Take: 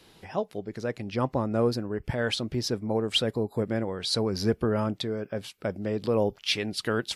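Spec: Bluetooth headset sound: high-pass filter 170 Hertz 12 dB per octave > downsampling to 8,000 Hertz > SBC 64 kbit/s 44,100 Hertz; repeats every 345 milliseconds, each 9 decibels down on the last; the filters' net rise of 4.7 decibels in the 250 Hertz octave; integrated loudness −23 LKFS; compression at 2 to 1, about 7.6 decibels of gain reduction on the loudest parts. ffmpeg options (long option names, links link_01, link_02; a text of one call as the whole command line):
ffmpeg -i in.wav -af "equalizer=frequency=250:width_type=o:gain=7,acompressor=threshold=-30dB:ratio=2,highpass=170,aecho=1:1:345|690|1035|1380:0.355|0.124|0.0435|0.0152,aresample=8000,aresample=44100,volume=9dB" -ar 44100 -c:a sbc -b:a 64k out.sbc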